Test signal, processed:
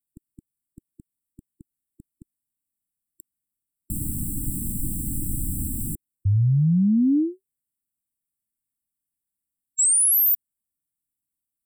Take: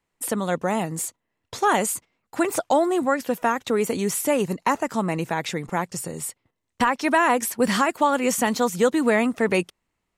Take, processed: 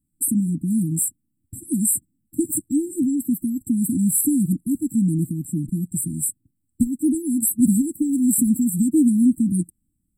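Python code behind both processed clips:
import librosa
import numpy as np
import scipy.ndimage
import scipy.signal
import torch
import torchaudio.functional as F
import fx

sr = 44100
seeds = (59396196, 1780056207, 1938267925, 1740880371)

y = fx.brickwall_bandstop(x, sr, low_hz=330.0, high_hz=7500.0)
y = F.gain(torch.from_numpy(y), 8.0).numpy()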